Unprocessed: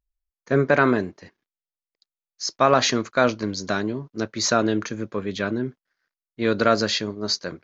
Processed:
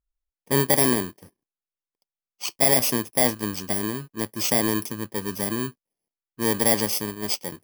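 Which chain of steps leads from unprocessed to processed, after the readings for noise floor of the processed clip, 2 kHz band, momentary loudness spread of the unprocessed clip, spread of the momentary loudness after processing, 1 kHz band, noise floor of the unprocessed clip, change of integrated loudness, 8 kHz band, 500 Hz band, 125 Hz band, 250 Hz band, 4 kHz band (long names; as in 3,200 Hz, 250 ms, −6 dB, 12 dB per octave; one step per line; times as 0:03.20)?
below −85 dBFS, −5.0 dB, 11 LU, 12 LU, −6.0 dB, below −85 dBFS, 0.0 dB, can't be measured, −4.5 dB, −1.5 dB, −2.5 dB, −2.5 dB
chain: samples in bit-reversed order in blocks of 32 samples
one half of a high-frequency compander decoder only
level −1.5 dB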